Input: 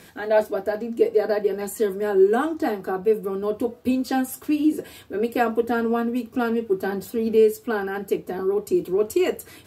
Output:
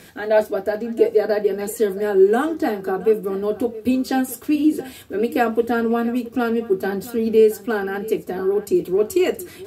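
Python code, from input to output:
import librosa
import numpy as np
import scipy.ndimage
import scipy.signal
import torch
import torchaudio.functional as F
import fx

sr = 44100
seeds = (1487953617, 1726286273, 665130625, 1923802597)

y = fx.peak_eq(x, sr, hz=990.0, db=-4.5, octaves=0.41)
y = y + 10.0 ** (-18.0 / 20.0) * np.pad(y, (int(673 * sr / 1000.0), 0))[:len(y)]
y = F.gain(torch.from_numpy(y), 3.0).numpy()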